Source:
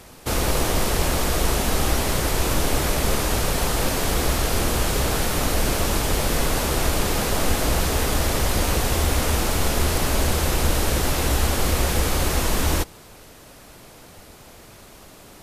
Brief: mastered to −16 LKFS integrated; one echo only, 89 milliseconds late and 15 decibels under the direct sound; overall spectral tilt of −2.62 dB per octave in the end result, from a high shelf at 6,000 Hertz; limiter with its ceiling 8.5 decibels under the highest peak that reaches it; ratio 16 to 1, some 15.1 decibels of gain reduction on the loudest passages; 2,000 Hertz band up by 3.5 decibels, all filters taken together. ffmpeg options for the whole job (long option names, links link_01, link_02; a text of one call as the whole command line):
ffmpeg -i in.wav -af "equalizer=frequency=2000:width_type=o:gain=3.5,highshelf=frequency=6000:gain=8,acompressor=threshold=-30dB:ratio=16,alimiter=level_in=2.5dB:limit=-24dB:level=0:latency=1,volume=-2.5dB,aecho=1:1:89:0.178,volume=20.5dB" out.wav